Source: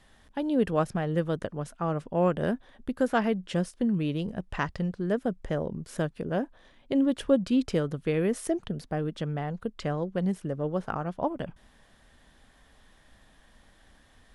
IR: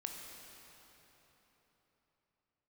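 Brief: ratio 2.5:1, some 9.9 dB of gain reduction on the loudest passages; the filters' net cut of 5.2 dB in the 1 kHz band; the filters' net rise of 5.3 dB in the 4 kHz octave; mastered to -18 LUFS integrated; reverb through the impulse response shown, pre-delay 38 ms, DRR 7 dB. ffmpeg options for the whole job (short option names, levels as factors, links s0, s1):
-filter_complex "[0:a]equalizer=f=1000:t=o:g=-8,equalizer=f=4000:t=o:g=8,acompressor=threshold=0.0178:ratio=2.5,asplit=2[s0][s1];[1:a]atrim=start_sample=2205,adelay=38[s2];[s1][s2]afir=irnorm=-1:irlink=0,volume=0.531[s3];[s0][s3]amix=inputs=2:normalize=0,volume=8.41"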